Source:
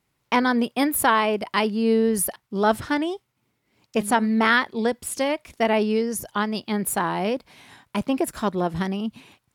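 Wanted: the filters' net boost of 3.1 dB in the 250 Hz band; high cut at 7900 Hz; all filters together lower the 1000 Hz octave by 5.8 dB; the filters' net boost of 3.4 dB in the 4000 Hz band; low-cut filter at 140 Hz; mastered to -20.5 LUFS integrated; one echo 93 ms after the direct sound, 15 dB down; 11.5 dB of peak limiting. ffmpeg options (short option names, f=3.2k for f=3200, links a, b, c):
-af "highpass=140,lowpass=7.9k,equalizer=f=250:t=o:g=4.5,equalizer=f=1k:t=o:g=-8,equalizer=f=4k:t=o:g=5.5,alimiter=limit=-17.5dB:level=0:latency=1,aecho=1:1:93:0.178,volume=6.5dB"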